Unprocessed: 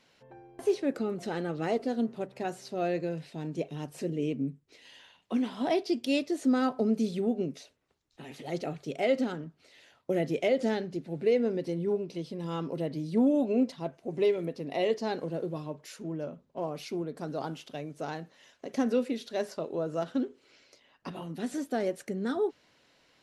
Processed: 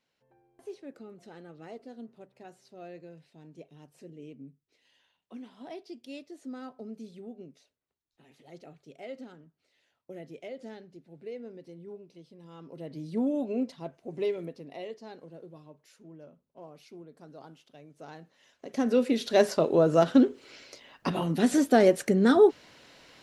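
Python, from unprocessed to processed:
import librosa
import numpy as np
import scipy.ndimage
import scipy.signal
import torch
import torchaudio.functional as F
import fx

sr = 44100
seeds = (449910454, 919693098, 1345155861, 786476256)

y = fx.gain(x, sr, db=fx.line((12.55, -15.0), (13.03, -4.0), (14.42, -4.0), (14.93, -13.5), (17.76, -13.5), (18.69, -2.0), (19.33, 10.5)))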